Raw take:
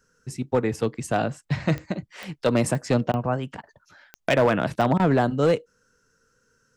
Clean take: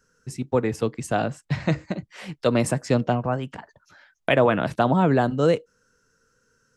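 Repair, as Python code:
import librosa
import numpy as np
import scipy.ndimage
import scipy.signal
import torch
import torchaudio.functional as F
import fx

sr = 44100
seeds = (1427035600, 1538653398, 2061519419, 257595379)

y = fx.fix_declip(x, sr, threshold_db=-13.0)
y = fx.fix_declick_ar(y, sr, threshold=10.0)
y = fx.fix_interpolate(y, sr, at_s=(3.12, 3.62, 4.98), length_ms=15.0)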